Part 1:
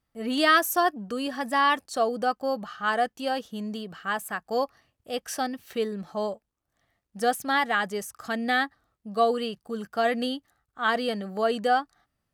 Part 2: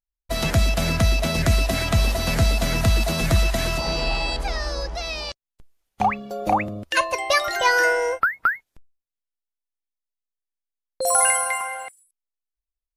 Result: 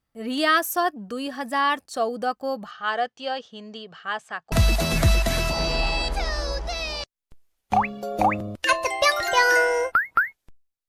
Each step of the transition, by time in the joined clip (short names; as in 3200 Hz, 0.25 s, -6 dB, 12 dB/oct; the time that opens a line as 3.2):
part 1
2.71–4.52 speaker cabinet 140–6400 Hz, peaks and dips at 200 Hz -8 dB, 300 Hz -10 dB, 3200 Hz +4 dB
4.52 switch to part 2 from 2.8 s